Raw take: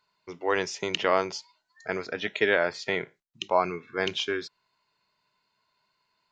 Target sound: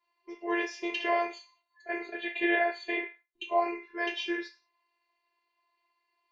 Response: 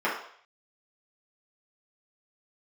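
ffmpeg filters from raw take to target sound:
-filter_complex "[0:a]asettb=1/sr,asplit=3[s0][s1][s2];[s0]atrim=end=1.304[s3];[s1]atrim=start=1.3:end=3.62,asetpts=PTS-STARTPTS,afade=t=in:d=0.004:c=qsin,afade=t=out:st=2.316:d=0.004:c=qsin,asuperstop=centerf=5400:order=12:qfactor=3.7[s4];[s2]atrim=start=3.616[s5];[s3][s4]acrossfade=d=0.004:c1=hsin:c2=qsin[s6];[s6][s5]acrossfade=d=0.004:c1=qsin:c2=hsin[s7];[1:a]atrim=start_sample=2205,asetrate=79380,aresample=44100[s8];[s7][s8]afir=irnorm=-1:irlink=0,afftfilt=real='hypot(re,im)*cos(PI*b)':imag='0':win_size=512:overlap=0.75,superequalizer=7b=2:10b=0.251:13b=0.631,volume=0.398"

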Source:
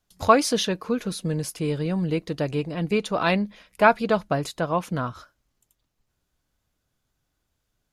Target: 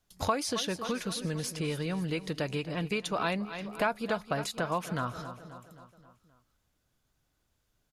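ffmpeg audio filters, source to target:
-filter_complex "[0:a]aecho=1:1:265|530|795|1060|1325:0.15|0.0793|0.042|0.0223|0.0118,acrossover=split=1000|7700[s0][s1][s2];[s0]acompressor=threshold=0.0251:ratio=4[s3];[s1]acompressor=threshold=0.0224:ratio=4[s4];[s2]acompressor=threshold=0.00708:ratio=4[s5];[s3][s4][s5]amix=inputs=3:normalize=0"

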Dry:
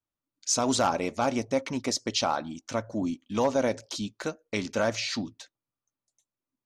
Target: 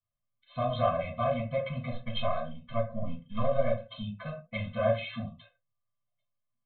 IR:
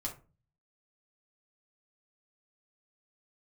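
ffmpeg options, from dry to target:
-filter_complex "[0:a]asettb=1/sr,asplit=3[s0][s1][s2];[s0]atrim=end=1.904[s3];[s1]atrim=start=1.9:end=3.85,asetpts=PTS-STARTPTS,afade=t=in:d=0.004:c=qsin,afade=t=out:st=1.946:d=0.004:c=qsin,aeval=exprs='if(lt(val(0),0),0.708*val(0),val(0))':c=same[s4];[s2]atrim=start=3.846[s5];[s3][s4]acrossfade=d=0.004:c1=hsin:c2=qsin[s6];[s6][s5]acrossfade=d=0.004:c1=qsin:c2=hsin,aresample=8000,aresample=44100[s7];[1:a]atrim=start_sample=2205,afade=t=out:st=0.21:d=0.01,atrim=end_sample=9702[s8];[s7][s8]afir=irnorm=-1:irlink=0,afftfilt=real='re*eq(mod(floor(b*sr/1024/250),2),0)':imag='im*eq(mod(floor(b*sr/1024/250),2),0)':win_size=1024:overlap=0.75"

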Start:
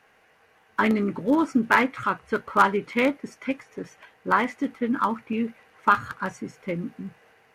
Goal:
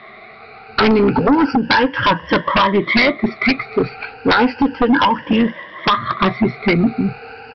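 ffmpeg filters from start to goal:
-af "afftfilt=real='re*pow(10,19/40*sin(2*PI*(1.2*log(max(b,1)*sr/1024/100)/log(2)-(0.32)*(pts-256)/sr)))':imag='im*pow(10,19/40*sin(2*PI*(1.2*log(max(b,1)*sr/1024/100)/log(2)-(0.32)*(pts-256)/sr)))':win_size=1024:overlap=0.75,acompressor=threshold=0.0794:ratio=20,aresample=11025,aeval=exprs='0.211*sin(PI/2*2.82*val(0)/0.211)':c=same,aresample=44100,volume=1.78"

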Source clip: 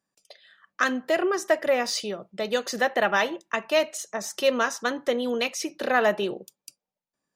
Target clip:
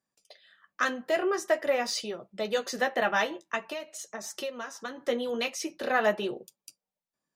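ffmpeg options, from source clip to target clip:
-filter_complex "[0:a]asettb=1/sr,asplit=3[s0][s1][s2];[s0]atrim=end=3.574[s3];[s1]atrim=start=3.57:end=5.01,asetpts=PTS-STARTPTS,afade=t=in:d=0.004:c=qsin,afade=t=out:st=1.436:d=0.004:c=qsin,acompressor=threshold=0.0355:ratio=12[s4];[s2]atrim=start=5.006[s5];[s3][s4]acrossfade=d=0.004:c1=hsin:c2=qsin[s6];[s6][s5]acrossfade=d=0.004:c1=qsin:c2=hsin,flanger=delay=7.7:depth=6.5:regen=-36:speed=0.47:shape=triangular"

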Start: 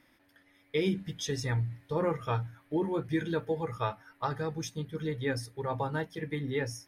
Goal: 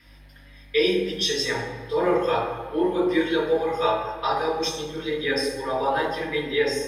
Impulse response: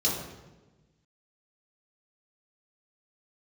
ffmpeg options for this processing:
-filter_complex "[0:a]highpass=540,aeval=exprs='val(0)+0.000447*(sin(2*PI*50*n/s)+sin(2*PI*2*50*n/s)/2+sin(2*PI*3*50*n/s)/3+sin(2*PI*4*50*n/s)/4+sin(2*PI*5*50*n/s)/5)':c=same[s0];[1:a]atrim=start_sample=2205,asetrate=31752,aresample=44100[s1];[s0][s1]afir=irnorm=-1:irlink=0"

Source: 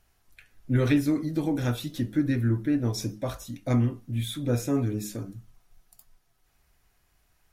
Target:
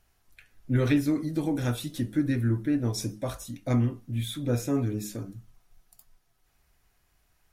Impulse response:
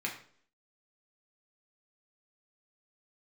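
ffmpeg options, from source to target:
-filter_complex "[0:a]asplit=3[s0][s1][s2];[s0]afade=t=out:st=1.18:d=0.02[s3];[s1]adynamicequalizer=threshold=0.00126:dfrequency=9100:dqfactor=1.9:tfrequency=9100:tqfactor=1.9:attack=5:release=100:ratio=0.375:range=3.5:mode=boostabove:tftype=bell,afade=t=in:st=1.18:d=0.02,afade=t=out:st=3.51:d=0.02[s4];[s2]afade=t=in:st=3.51:d=0.02[s5];[s3][s4][s5]amix=inputs=3:normalize=0,volume=0.891"

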